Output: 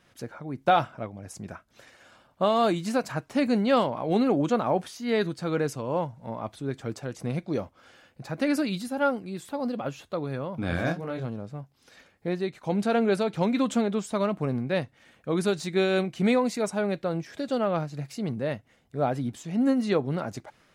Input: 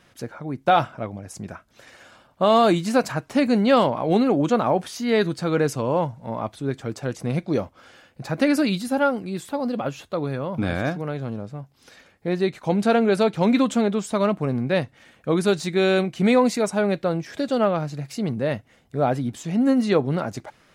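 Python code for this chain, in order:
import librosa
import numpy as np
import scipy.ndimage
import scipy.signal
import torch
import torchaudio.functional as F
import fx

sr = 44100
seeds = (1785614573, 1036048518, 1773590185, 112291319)

y = fx.doubler(x, sr, ms=24.0, db=-4.0, at=(10.71, 11.25), fade=0.02)
y = fx.am_noise(y, sr, seeds[0], hz=5.7, depth_pct=55)
y = y * 10.0 ** (-2.5 / 20.0)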